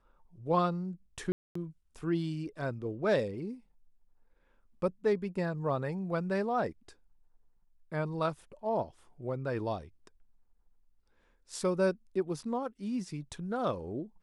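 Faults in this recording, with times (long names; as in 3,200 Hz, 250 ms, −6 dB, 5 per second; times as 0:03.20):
0:01.32–0:01.55: drop-out 234 ms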